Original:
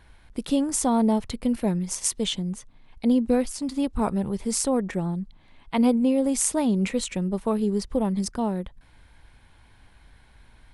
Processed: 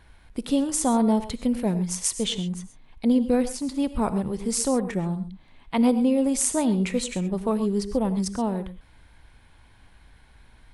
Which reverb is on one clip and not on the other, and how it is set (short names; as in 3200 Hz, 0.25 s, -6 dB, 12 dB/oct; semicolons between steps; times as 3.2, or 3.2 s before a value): non-linear reverb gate 0.15 s rising, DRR 11.5 dB